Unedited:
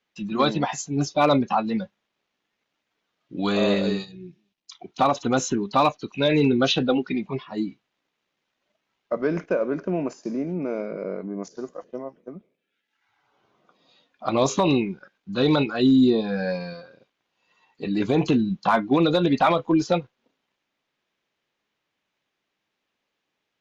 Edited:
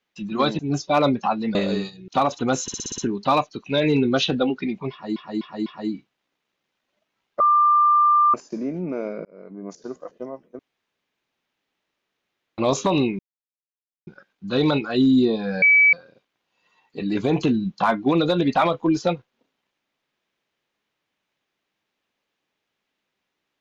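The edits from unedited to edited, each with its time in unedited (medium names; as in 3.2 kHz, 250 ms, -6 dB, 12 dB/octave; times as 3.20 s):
0.59–0.86 s: delete
1.82–3.70 s: delete
4.23–4.92 s: delete
5.46 s: stutter 0.06 s, 7 plays
7.39–7.64 s: loop, 4 plays
9.13–10.07 s: bleep 1.19 kHz -13 dBFS
10.98–11.57 s: fade in
12.32–14.31 s: room tone
14.92 s: insert silence 0.88 s
16.47–16.78 s: bleep 2.29 kHz -11 dBFS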